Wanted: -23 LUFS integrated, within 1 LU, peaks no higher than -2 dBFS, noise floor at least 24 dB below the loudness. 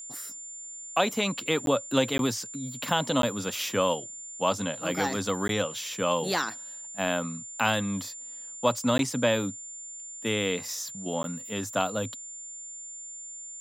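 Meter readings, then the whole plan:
dropouts 6; longest dropout 12 ms; steady tone 7200 Hz; tone level -39 dBFS; loudness -29.0 LUFS; peak -8.5 dBFS; loudness target -23.0 LUFS
-> interpolate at 1.66/2.18/3.22/5.48/8.98/11.23, 12 ms; notch 7200 Hz, Q 30; gain +6 dB

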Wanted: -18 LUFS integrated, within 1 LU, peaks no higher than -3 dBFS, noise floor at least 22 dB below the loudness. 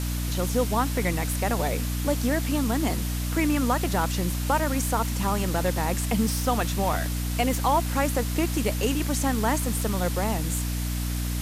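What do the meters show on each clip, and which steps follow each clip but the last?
hum 60 Hz; harmonics up to 300 Hz; hum level -26 dBFS; noise floor -28 dBFS; noise floor target -48 dBFS; loudness -26.0 LUFS; peak -10.5 dBFS; loudness target -18.0 LUFS
-> de-hum 60 Hz, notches 5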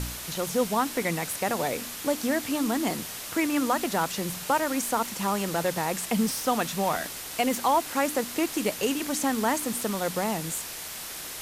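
hum none; noise floor -38 dBFS; noise floor target -50 dBFS
-> noise print and reduce 12 dB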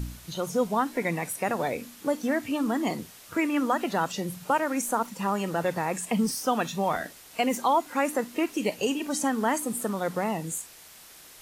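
noise floor -50 dBFS; loudness -28.0 LUFS; peak -12.0 dBFS; loudness target -18.0 LUFS
-> gain +10 dB; limiter -3 dBFS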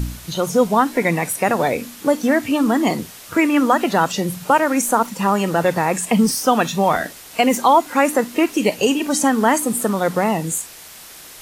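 loudness -18.0 LUFS; peak -3.0 dBFS; noise floor -40 dBFS

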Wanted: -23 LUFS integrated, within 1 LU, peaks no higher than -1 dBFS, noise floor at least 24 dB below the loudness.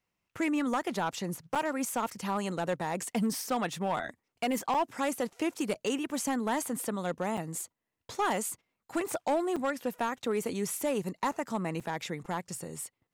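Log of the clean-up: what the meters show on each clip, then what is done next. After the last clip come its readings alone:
clipped 1.1%; flat tops at -23.0 dBFS; dropouts 6; longest dropout 5.8 ms; loudness -32.5 LUFS; peak -23.0 dBFS; loudness target -23.0 LUFS
-> clip repair -23 dBFS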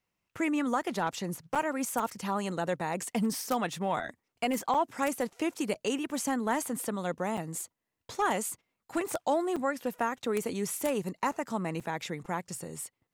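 clipped 0.0%; dropouts 6; longest dropout 5.8 ms
-> interpolate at 1.55/4.74/5.74/7.37/9.56/11.8, 5.8 ms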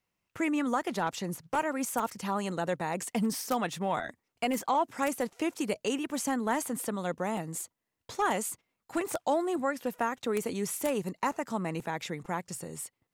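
dropouts 0; loudness -32.0 LUFS; peak -14.0 dBFS; loudness target -23.0 LUFS
-> gain +9 dB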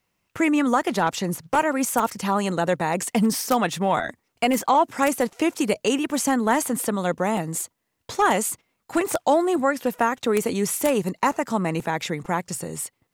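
loudness -23.0 LUFS; peak -5.0 dBFS; noise floor -75 dBFS

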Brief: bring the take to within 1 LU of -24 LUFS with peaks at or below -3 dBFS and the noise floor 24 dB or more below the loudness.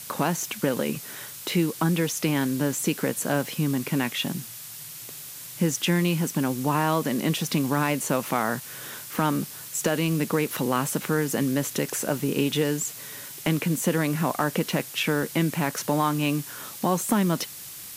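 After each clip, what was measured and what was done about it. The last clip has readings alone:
noise floor -40 dBFS; noise floor target -50 dBFS; loudness -26.0 LUFS; peak -9.5 dBFS; loudness target -24.0 LUFS
-> denoiser 10 dB, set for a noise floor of -40 dBFS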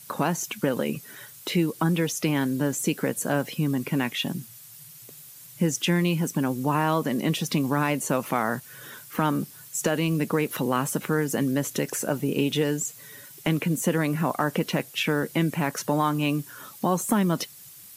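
noise floor -47 dBFS; noise floor target -50 dBFS
-> denoiser 6 dB, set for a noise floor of -47 dBFS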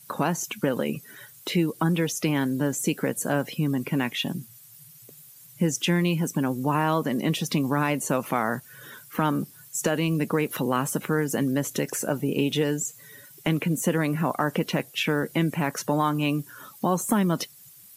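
noise floor -50 dBFS; loudness -26.0 LUFS; peak -9.5 dBFS; loudness target -24.0 LUFS
-> gain +2 dB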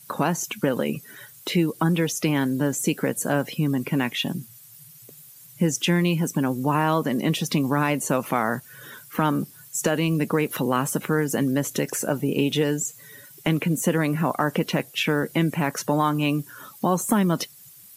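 loudness -24.0 LUFS; peak -7.5 dBFS; noise floor -48 dBFS

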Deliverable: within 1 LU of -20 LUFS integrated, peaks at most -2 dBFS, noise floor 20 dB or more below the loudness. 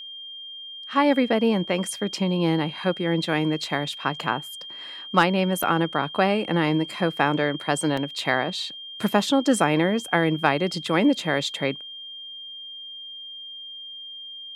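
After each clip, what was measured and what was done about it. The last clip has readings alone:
dropouts 2; longest dropout 4.3 ms; steady tone 3200 Hz; tone level -36 dBFS; loudness -23.5 LUFS; peak -3.5 dBFS; loudness target -20.0 LUFS
-> interpolate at 5.63/7.97, 4.3 ms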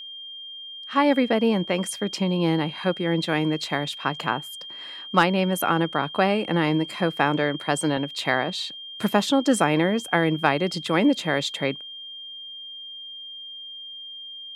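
dropouts 0; steady tone 3200 Hz; tone level -36 dBFS
-> notch 3200 Hz, Q 30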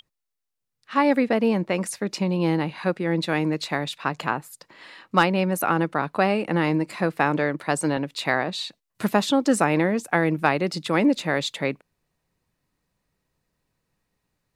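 steady tone none; loudness -23.5 LUFS; peak -4.0 dBFS; loudness target -20.0 LUFS
-> gain +3.5 dB; limiter -2 dBFS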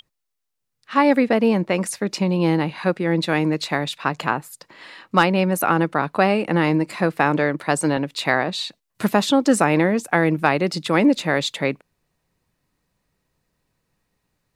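loudness -20.5 LUFS; peak -2.0 dBFS; noise floor -78 dBFS

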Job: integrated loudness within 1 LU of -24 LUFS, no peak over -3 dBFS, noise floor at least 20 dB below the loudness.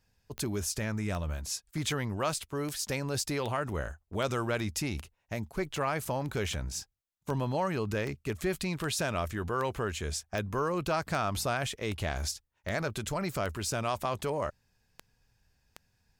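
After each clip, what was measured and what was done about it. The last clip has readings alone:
clicks 21; loudness -33.0 LUFS; peak -18.5 dBFS; loudness target -24.0 LUFS
-> de-click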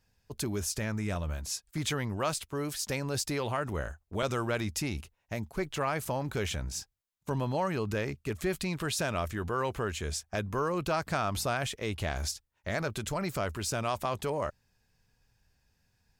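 clicks 0; loudness -33.5 LUFS; peak -17.0 dBFS; loudness target -24.0 LUFS
-> gain +9.5 dB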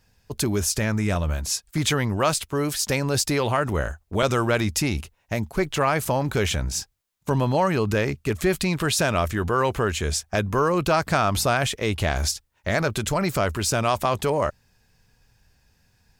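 loudness -23.5 LUFS; peak -7.5 dBFS; noise floor -67 dBFS

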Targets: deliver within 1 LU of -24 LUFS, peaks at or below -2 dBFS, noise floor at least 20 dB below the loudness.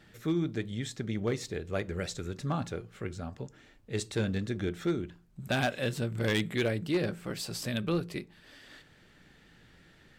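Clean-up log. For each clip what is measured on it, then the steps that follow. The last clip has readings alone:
clipped 0.5%; flat tops at -22.0 dBFS; loudness -33.5 LUFS; peak -22.0 dBFS; loudness target -24.0 LUFS
-> clip repair -22 dBFS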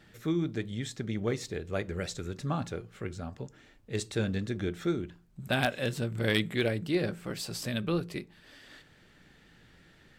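clipped 0.0%; loudness -33.0 LUFS; peak -13.0 dBFS; loudness target -24.0 LUFS
-> gain +9 dB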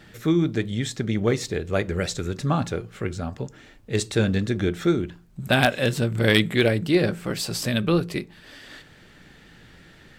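loudness -24.0 LUFS; peak -4.0 dBFS; noise floor -51 dBFS

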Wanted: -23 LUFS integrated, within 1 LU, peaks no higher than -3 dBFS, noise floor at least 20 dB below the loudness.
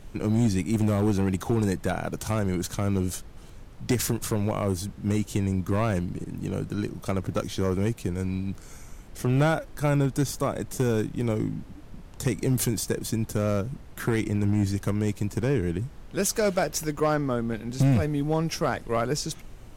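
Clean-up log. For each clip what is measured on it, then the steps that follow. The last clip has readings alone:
clipped 0.8%; flat tops at -16.0 dBFS; noise floor -45 dBFS; noise floor target -47 dBFS; loudness -27.0 LUFS; peak -16.0 dBFS; loudness target -23.0 LUFS
-> clip repair -16 dBFS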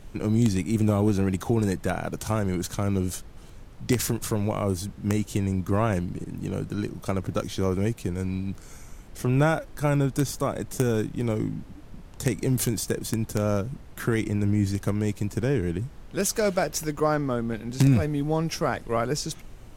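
clipped 0.0%; noise floor -45 dBFS; noise floor target -47 dBFS
-> noise print and reduce 6 dB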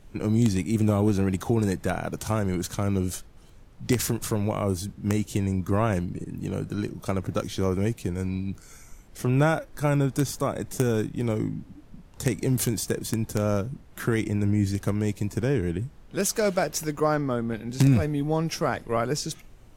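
noise floor -50 dBFS; loudness -26.5 LUFS; peak -7.0 dBFS; loudness target -23.0 LUFS
-> gain +3.5 dB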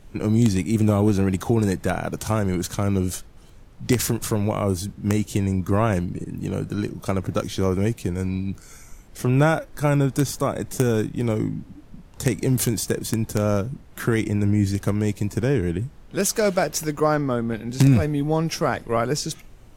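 loudness -23.0 LUFS; peak -3.5 dBFS; noise floor -46 dBFS

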